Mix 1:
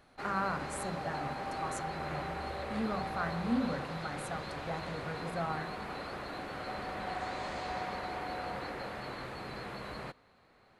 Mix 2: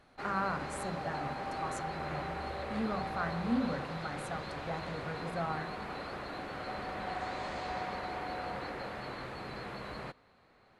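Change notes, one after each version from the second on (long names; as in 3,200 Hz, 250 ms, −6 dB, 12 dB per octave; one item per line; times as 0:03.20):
master: add high-shelf EQ 9,700 Hz −7.5 dB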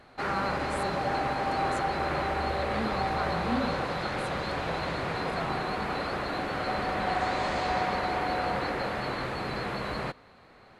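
background +9.5 dB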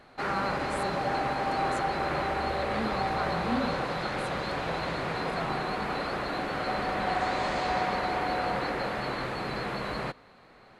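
background: add parametric band 85 Hz −10 dB 0.32 octaves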